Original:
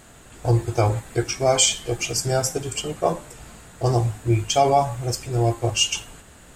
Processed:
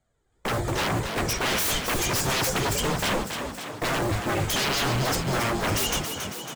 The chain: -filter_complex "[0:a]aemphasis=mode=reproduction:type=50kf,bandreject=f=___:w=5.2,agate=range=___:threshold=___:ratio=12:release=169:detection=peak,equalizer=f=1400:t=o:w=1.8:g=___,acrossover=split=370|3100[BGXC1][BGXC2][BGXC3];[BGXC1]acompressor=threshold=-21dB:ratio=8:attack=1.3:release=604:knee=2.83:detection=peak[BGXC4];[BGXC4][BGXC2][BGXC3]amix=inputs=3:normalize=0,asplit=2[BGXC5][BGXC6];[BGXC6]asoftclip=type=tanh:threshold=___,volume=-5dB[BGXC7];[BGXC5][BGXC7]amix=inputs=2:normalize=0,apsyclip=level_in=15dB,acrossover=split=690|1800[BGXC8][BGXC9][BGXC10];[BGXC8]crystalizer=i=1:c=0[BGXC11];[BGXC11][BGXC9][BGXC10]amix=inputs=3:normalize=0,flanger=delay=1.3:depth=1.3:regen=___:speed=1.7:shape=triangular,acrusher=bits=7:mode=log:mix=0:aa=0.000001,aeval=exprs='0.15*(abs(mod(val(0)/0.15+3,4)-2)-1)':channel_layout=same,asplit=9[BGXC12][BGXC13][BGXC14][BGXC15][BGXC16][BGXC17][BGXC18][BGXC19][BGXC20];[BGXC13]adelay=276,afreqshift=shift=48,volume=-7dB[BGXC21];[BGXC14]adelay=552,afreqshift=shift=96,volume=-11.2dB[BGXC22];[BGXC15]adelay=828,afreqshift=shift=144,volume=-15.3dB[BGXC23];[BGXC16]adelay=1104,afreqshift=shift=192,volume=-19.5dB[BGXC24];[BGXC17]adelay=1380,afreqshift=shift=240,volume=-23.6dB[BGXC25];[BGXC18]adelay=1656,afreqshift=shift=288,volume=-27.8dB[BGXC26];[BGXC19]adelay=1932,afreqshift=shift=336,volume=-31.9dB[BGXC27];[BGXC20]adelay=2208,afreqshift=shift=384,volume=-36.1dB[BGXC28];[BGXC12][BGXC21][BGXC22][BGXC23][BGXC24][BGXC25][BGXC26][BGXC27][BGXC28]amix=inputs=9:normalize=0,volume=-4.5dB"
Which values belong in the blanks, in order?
2700, -35dB, -36dB, -3.5, -26dB, 22